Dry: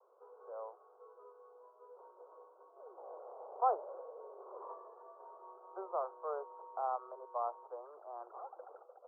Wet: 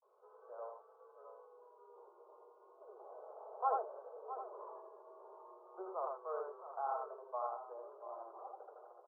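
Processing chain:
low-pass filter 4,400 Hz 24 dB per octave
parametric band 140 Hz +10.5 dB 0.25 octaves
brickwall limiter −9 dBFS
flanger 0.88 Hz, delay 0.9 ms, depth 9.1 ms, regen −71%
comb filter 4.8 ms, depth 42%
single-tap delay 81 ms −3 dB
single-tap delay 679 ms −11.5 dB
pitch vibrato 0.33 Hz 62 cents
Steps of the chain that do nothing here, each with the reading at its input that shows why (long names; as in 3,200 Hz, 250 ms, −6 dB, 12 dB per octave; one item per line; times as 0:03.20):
low-pass filter 4,400 Hz: nothing at its input above 1,400 Hz
parametric band 140 Hz: nothing at its input below 340 Hz
brickwall limiter −9 dBFS: peak of its input −21.0 dBFS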